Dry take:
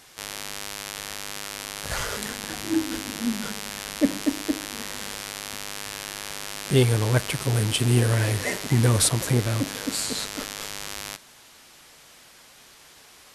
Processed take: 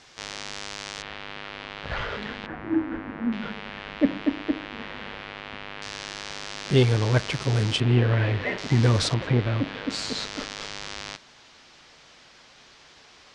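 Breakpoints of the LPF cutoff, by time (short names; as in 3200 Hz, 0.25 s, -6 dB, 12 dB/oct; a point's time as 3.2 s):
LPF 24 dB/oct
6400 Hz
from 1.02 s 3400 Hz
from 2.46 s 1900 Hz
from 3.32 s 3100 Hz
from 5.82 s 6000 Hz
from 7.8 s 3300 Hz
from 8.58 s 5700 Hz
from 9.14 s 3400 Hz
from 9.9 s 5800 Hz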